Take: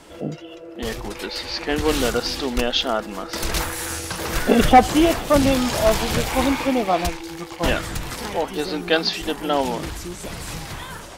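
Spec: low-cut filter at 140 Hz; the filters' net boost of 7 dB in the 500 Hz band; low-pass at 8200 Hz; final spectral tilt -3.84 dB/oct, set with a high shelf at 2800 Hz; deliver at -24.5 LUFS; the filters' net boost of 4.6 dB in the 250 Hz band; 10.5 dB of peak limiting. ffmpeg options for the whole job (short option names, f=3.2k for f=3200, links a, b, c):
-af "highpass=140,lowpass=8.2k,equalizer=f=250:t=o:g=3.5,equalizer=f=500:t=o:g=7.5,highshelf=f=2.8k:g=3.5,volume=-4.5dB,alimiter=limit=-11.5dB:level=0:latency=1"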